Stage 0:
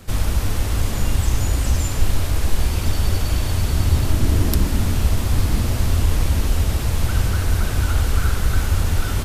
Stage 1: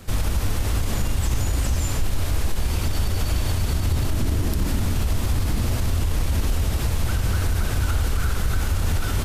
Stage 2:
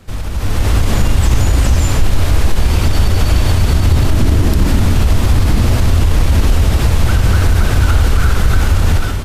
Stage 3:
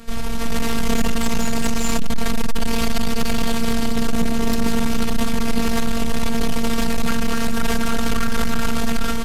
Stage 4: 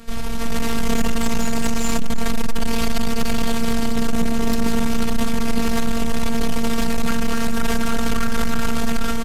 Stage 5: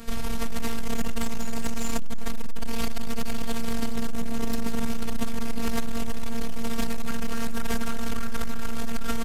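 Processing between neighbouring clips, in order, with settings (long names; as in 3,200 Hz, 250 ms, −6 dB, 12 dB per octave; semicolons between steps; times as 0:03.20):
brickwall limiter −13.5 dBFS, peak gain reduction 11 dB
high-shelf EQ 6,600 Hz −8 dB; automatic gain control gain up to 13 dB
soft clipping −15.5 dBFS, distortion −9 dB; phases set to zero 230 Hz; level +5 dB
slap from a distant wall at 53 metres, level −16 dB; level −1 dB
high-shelf EQ 11,000 Hz +4.5 dB; saturating transformer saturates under 60 Hz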